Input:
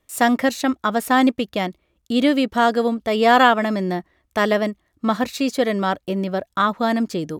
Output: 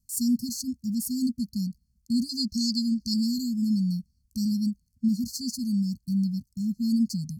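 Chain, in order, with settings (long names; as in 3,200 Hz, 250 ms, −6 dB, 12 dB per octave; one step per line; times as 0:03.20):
linear-phase brick-wall band-stop 250–4,200 Hz
0:02.29–0:03.14: flat-topped bell 2,600 Hz +12.5 dB 3 octaves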